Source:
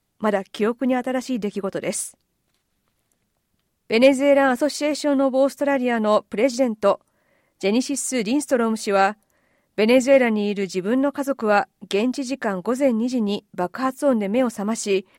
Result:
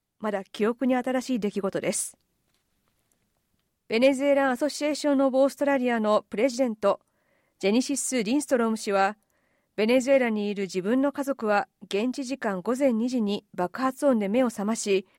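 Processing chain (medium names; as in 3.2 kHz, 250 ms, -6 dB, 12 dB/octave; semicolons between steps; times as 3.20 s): level rider gain up to 7.5 dB; trim -9 dB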